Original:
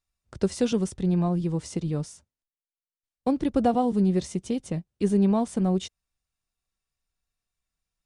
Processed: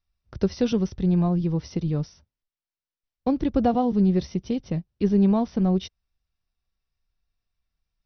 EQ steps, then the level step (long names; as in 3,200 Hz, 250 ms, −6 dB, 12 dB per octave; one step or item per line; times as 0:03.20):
linear-phase brick-wall low-pass 6,100 Hz
low-shelf EQ 120 Hz +9 dB
0.0 dB